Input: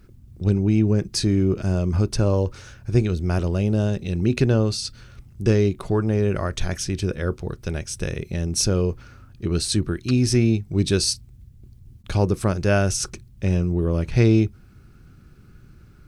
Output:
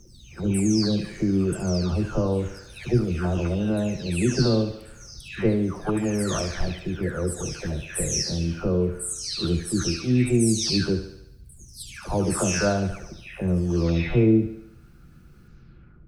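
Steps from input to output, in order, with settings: spectral delay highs early, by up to 0.605 s; on a send: thinning echo 72 ms, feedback 57%, high-pass 180 Hz, level -10.5 dB

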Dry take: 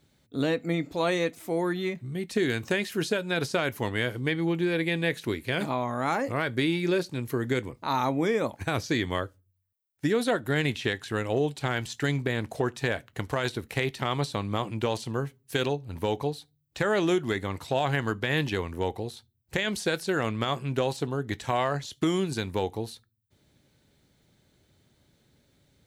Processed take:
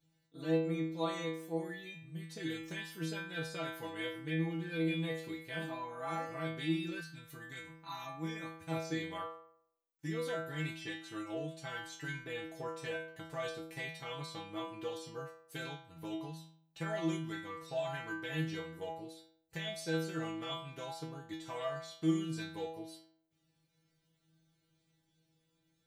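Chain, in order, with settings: metallic resonator 160 Hz, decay 0.69 s, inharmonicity 0.002; 7–8.7 bell 490 Hz -13.5 dB -> -7 dB 1.5 oct; gain +4 dB

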